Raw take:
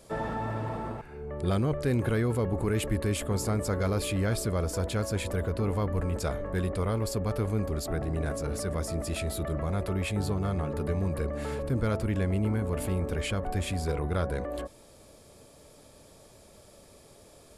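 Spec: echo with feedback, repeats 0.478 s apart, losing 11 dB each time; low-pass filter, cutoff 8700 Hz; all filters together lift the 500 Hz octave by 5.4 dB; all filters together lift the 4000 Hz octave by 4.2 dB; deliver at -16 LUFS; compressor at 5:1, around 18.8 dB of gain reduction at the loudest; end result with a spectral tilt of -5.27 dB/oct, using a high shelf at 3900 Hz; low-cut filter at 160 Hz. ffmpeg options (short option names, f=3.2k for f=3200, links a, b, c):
-af "highpass=160,lowpass=8.7k,equalizer=f=500:t=o:g=6.5,highshelf=f=3.9k:g=-4,equalizer=f=4k:t=o:g=8,acompressor=threshold=-44dB:ratio=5,aecho=1:1:478|956|1434:0.282|0.0789|0.0221,volume=29.5dB"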